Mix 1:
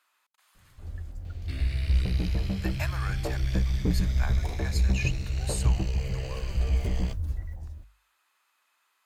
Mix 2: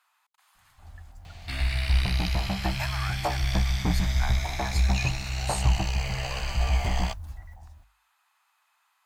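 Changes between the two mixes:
second sound +9.5 dB; master: add resonant low shelf 600 Hz -8.5 dB, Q 3

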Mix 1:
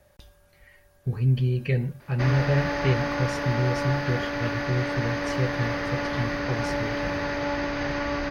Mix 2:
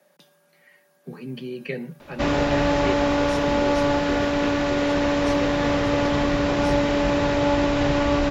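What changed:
speech: add steep high-pass 150 Hz 96 dB/octave; background: remove rippled Chebyshev low-pass 6.5 kHz, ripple 9 dB

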